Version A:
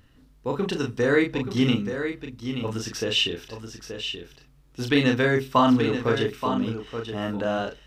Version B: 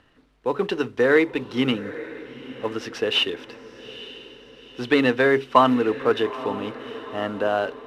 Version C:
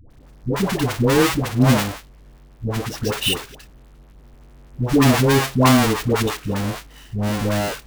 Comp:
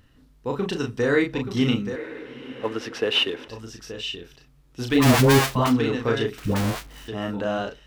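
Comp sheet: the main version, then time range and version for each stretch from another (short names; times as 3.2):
A
1.96–3.48 from B
5–5.62 from C, crossfade 0.24 s
6.38–7.08 from C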